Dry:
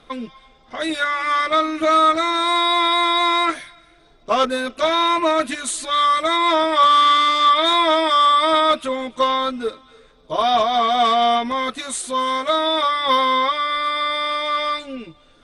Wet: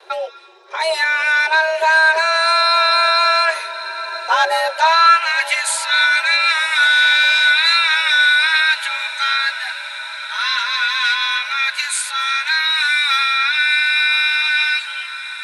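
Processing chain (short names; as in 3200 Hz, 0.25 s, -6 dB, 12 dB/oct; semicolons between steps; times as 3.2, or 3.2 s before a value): in parallel at +0.5 dB: limiter -15.5 dBFS, peak gain reduction 10 dB; on the sum: high-pass sweep 62 Hz -> 1700 Hz, 4.48–5.22; gate with hold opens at -39 dBFS; on a send: diffused feedback echo 1.019 s, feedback 71%, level -14.5 dB; on the sum: frequency shift +320 Hz; gain -1 dB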